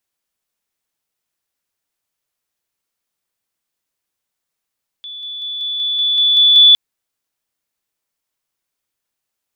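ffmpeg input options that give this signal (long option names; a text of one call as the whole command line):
ffmpeg -f lavfi -i "aevalsrc='pow(10,(-28+3*floor(t/0.19))/20)*sin(2*PI*3460*t)':duration=1.71:sample_rate=44100" out.wav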